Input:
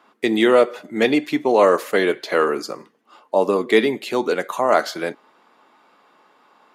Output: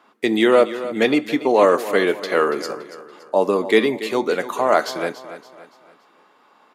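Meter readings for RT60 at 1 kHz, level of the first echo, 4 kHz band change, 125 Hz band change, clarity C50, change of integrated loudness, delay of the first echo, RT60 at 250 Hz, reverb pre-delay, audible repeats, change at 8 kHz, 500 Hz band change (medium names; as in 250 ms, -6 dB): no reverb, -14.0 dB, 0.0 dB, 0.0 dB, no reverb, 0.0 dB, 284 ms, no reverb, no reverb, 3, 0.0 dB, 0.0 dB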